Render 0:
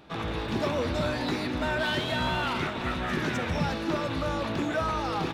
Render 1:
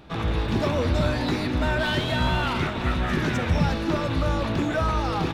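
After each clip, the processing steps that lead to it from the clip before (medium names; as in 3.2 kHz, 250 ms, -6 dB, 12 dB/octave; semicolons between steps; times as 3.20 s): bass shelf 110 Hz +12 dB; trim +2.5 dB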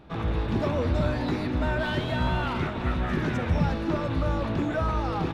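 treble shelf 2.6 kHz -9 dB; trim -2 dB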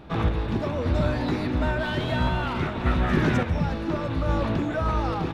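random-step tremolo; trim +5.5 dB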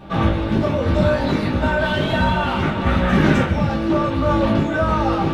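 reverberation, pre-delay 3 ms, DRR -5 dB; trim +1 dB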